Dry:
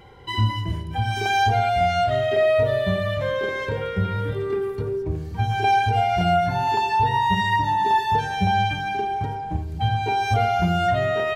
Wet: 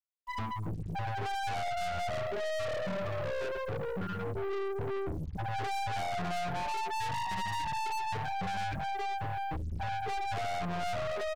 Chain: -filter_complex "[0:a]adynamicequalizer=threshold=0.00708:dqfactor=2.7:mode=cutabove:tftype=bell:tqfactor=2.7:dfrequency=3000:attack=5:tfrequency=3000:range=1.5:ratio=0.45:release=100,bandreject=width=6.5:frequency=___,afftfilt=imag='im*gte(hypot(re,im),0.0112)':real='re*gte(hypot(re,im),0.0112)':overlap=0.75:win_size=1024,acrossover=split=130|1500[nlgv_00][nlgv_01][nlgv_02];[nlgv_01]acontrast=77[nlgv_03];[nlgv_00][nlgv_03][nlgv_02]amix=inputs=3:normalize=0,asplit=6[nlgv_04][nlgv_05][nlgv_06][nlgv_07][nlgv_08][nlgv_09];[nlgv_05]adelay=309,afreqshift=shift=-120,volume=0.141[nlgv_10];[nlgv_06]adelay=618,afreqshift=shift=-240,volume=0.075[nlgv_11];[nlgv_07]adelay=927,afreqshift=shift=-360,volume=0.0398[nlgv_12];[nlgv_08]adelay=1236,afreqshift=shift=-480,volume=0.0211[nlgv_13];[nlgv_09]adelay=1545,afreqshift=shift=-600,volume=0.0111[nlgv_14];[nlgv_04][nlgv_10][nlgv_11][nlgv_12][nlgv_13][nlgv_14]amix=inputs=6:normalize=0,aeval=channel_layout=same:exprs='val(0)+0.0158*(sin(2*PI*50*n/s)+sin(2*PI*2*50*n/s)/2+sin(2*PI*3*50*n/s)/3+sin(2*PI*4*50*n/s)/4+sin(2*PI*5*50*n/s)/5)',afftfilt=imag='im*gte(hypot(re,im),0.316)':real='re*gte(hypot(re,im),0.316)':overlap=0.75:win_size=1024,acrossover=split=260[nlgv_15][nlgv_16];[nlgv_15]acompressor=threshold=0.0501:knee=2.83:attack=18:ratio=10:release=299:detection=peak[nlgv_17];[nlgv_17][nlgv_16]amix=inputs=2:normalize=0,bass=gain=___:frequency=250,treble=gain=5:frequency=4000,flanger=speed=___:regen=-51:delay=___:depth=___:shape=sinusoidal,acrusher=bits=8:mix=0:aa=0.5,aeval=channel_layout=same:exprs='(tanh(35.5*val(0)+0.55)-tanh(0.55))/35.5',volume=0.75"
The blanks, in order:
7600, 7, 0.42, 2.4, 5.1